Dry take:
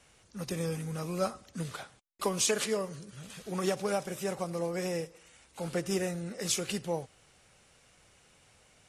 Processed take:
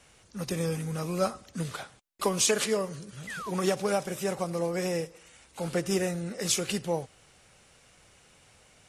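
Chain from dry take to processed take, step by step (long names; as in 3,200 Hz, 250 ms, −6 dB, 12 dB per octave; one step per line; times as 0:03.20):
sound drawn into the spectrogram fall, 0:03.27–0:03.51, 900–2,100 Hz −42 dBFS
level +3.5 dB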